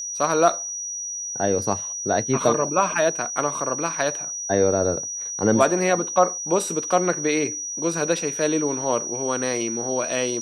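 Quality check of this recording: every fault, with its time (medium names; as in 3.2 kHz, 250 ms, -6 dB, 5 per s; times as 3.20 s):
whine 5.8 kHz -28 dBFS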